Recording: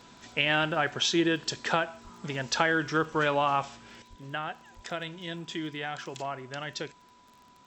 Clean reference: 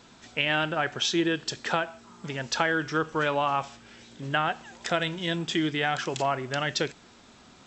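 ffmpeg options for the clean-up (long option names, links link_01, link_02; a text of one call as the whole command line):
ffmpeg -i in.wav -filter_complex "[0:a]adeclick=threshold=4,bandreject=frequency=990:width=30,asplit=3[link_01][link_02][link_03];[link_01]afade=type=out:start_time=2.03:duration=0.02[link_04];[link_02]highpass=frequency=140:width=0.5412,highpass=frequency=140:width=1.3066,afade=type=in:start_time=2.03:duration=0.02,afade=type=out:start_time=2.15:duration=0.02[link_05];[link_03]afade=type=in:start_time=2.15:duration=0.02[link_06];[link_04][link_05][link_06]amix=inputs=3:normalize=0,asplit=3[link_07][link_08][link_09];[link_07]afade=type=out:start_time=4.09:duration=0.02[link_10];[link_08]highpass=frequency=140:width=0.5412,highpass=frequency=140:width=1.3066,afade=type=in:start_time=4.09:duration=0.02,afade=type=out:start_time=4.21:duration=0.02[link_11];[link_09]afade=type=in:start_time=4.21:duration=0.02[link_12];[link_10][link_11][link_12]amix=inputs=3:normalize=0,asplit=3[link_13][link_14][link_15];[link_13]afade=type=out:start_time=4.75:duration=0.02[link_16];[link_14]highpass=frequency=140:width=0.5412,highpass=frequency=140:width=1.3066,afade=type=in:start_time=4.75:duration=0.02,afade=type=out:start_time=4.87:duration=0.02[link_17];[link_15]afade=type=in:start_time=4.87:duration=0.02[link_18];[link_16][link_17][link_18]amix=inputs=3:normalize=0,asetnsamples=nb_out_samples=441:pad=0,asendcmd='4.02 volume volume 8.5dB',volume=0dB" out.wav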